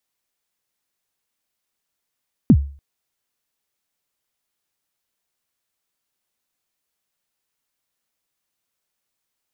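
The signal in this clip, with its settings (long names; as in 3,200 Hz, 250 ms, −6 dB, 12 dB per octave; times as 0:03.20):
synth kick length 0.29 s, from 290 Hz, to 70 Hz, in 62 ms, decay 0.41 s, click off, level −4 dB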